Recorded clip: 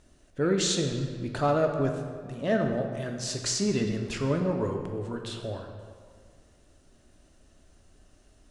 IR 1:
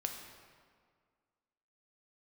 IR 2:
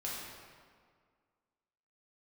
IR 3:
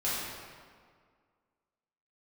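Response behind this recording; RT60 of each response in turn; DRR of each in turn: 1; 1.9 s, 1.9 s, 1.9 s; 3.0 dB, -6.5 dB, -10.5 dB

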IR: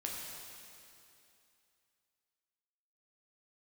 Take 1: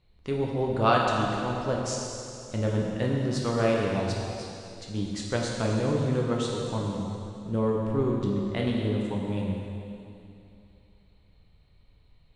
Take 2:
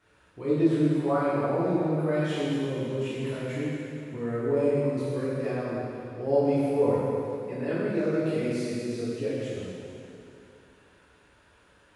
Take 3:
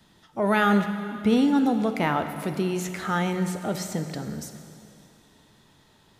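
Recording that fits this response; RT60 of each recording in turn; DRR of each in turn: 1; 2.7 s, 2.7 s, 2.7 s; -2.5 dB, -11.0 dB, 7.0 dB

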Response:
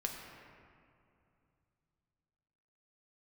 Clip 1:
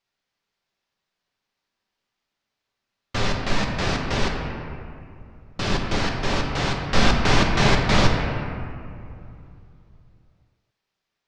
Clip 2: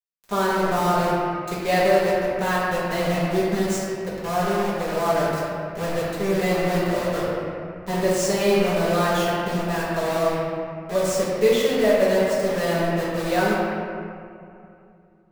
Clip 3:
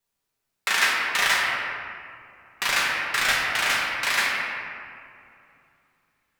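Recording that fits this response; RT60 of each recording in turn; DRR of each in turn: 1; 2.6 s, 2.6 s, 2.6 s; 0.5 dB, -11.0 dB, -5.5 dB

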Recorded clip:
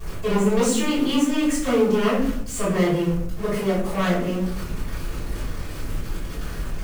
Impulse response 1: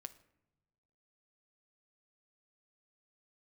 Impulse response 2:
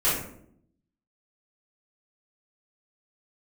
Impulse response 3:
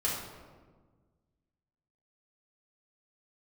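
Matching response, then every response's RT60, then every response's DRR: 2; no single decay rate, 0.70 s, 1.5 s; 11.0 dB, -13.0 dB, -6.5 dB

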